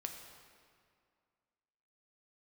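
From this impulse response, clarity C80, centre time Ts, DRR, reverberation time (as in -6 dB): 6.0 dB, 48 ms, 3.0 dB, 2.2 s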